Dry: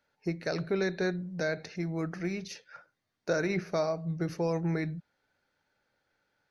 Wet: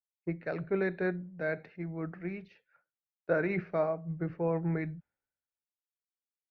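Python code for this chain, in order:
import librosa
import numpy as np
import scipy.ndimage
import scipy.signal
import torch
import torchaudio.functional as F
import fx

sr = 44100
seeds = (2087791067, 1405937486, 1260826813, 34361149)

y = scipy.signal.sosfilt(scipy.signal.butter(4, 2500.0, 'lowpass', fs=sr, output='sos'), x)
y = fx.band_widen(y, sr, depth_pct=100)
y = F.gain(torch.from_numpy(y), -2.0).numpy()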